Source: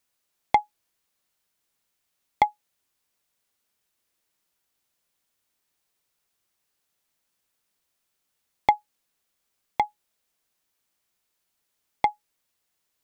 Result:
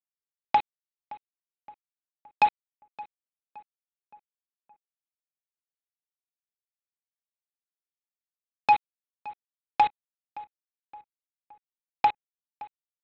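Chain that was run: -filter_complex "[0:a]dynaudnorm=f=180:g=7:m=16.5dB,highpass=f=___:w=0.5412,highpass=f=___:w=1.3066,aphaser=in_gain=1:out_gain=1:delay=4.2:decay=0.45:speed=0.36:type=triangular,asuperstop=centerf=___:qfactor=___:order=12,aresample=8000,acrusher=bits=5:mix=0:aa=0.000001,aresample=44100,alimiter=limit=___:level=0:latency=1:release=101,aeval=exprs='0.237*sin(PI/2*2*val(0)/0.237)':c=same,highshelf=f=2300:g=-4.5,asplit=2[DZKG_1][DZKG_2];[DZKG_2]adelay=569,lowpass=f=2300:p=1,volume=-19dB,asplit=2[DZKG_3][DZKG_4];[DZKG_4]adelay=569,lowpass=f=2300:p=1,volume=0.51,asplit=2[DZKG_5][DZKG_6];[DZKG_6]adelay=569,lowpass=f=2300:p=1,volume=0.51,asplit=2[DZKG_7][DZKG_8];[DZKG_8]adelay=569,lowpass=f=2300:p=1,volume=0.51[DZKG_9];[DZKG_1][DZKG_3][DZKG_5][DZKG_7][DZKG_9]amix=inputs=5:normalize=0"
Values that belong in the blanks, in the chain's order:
420, 420, 2200, 4.8, -12.5dB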